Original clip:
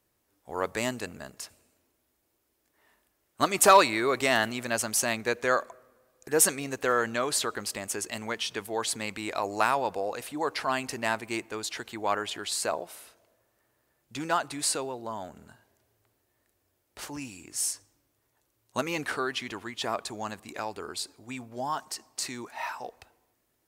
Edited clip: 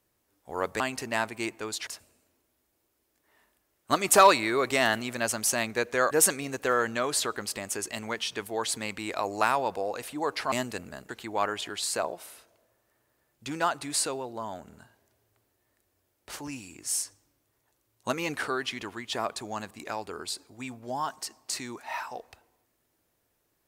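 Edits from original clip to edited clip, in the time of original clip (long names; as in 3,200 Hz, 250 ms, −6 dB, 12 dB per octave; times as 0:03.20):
0:00.80–0:01.37: swap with 0:10.71–0:11.78
0:05.61–0:06.30: remove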